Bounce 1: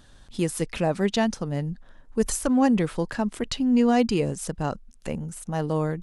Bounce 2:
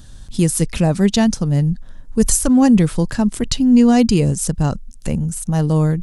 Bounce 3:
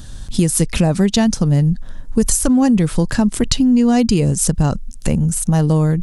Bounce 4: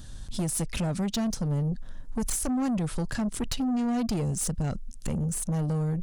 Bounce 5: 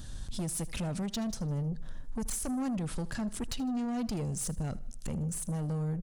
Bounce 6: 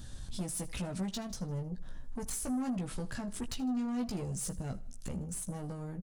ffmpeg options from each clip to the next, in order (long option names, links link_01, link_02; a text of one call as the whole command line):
ffmpeg -i in.wav -af "bass=frequency=250:gain=12,treble=frequency=4000:gain=10,volume=3dB" out.wav
ffmpeg -i in.wav -af "acompressor=threshold=-18dB:ratio=5,volume=6.5dB" out.wav
ffmpeg -i in.wav -af "asoftclip=type=tanh:threshold=-15dB,volume=-9dB" out.wav
ffmpeg -i in.wav -af "alimiter=level_in=6dB:limit=-24dB:level=0:latency=1:release=148,volume=-6dB,aecho=1:1:78|156|234|312:0.106|0.0498|0.0234|0.011" out.wav
ffmpeg -i in.wav -filter_complex "[0:a]asplit=2[link_01][link_02];[link_02]adelay=16,volume=-5dB[link_03];[link_01][link_03]amix=inputs=2:normalize=0,volume=-3.5dB" out.wav